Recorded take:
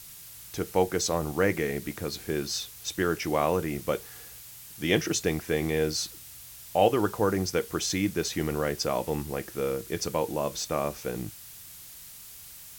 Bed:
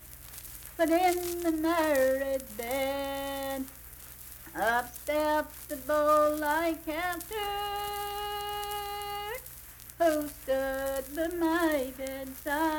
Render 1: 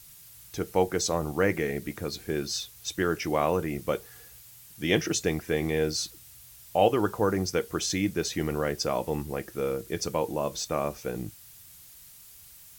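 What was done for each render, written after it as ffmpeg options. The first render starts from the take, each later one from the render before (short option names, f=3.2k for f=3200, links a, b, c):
-af "afftdn=nr=6:nf=-47"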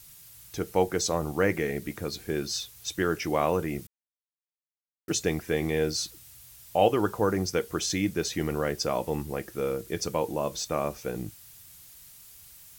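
-filter_complex "[0:a]asplit=3[a][b][c];[a]atrim=end=3.87,asetpts=PTS-STARTPTS,afade=t=out:st=3.866:d=0.004:c=hsin[d];[b]atrim=start=3.87:end=5.08,asetpts=PTS-STARTPTS,volume=0[e];[c]atrim=start=5.08,asetpts=PTS-STARTPTS,afade=t=in:d=0.004:c=hsin[f];[d][e][f]concat=n=3:v=0:a=1"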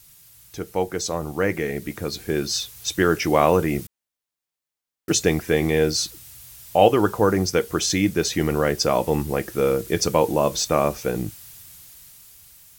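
-af "dynaudnorm=f=440:g=9:m=11dB"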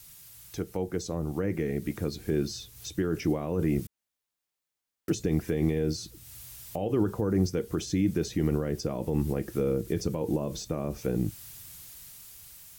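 -filter_complex "[0:a]alimiter=limit=-13dB:level=0:latency=1:release=38,acrossover=split=400[a][b];[b]acompressor=threshold=-43dB:ratio=3[c];[a][c]amix=inputs=2:normalize=0"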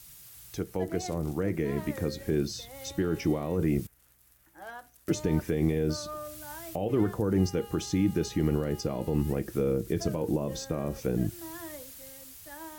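-filter_complex "[1:a]volume=-16dB[a];[0:a][a]amix=inputs=2:normalize=0"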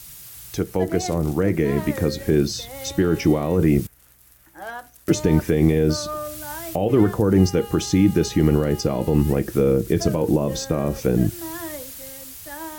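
-af "volume=9.5dB"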